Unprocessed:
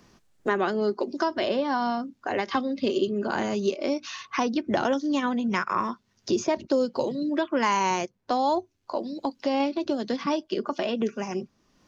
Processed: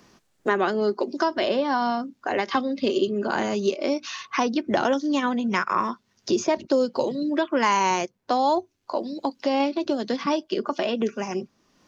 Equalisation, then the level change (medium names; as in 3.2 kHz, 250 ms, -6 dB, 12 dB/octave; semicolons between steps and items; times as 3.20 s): bass shelf 110 Hz -9.5 dB; +3.0 dB